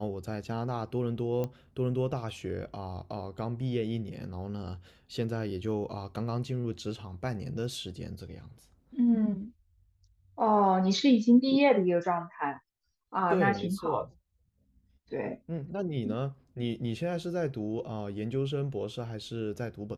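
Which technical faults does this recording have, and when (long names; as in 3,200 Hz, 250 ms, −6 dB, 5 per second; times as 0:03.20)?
0:01.44: click −21 dBFS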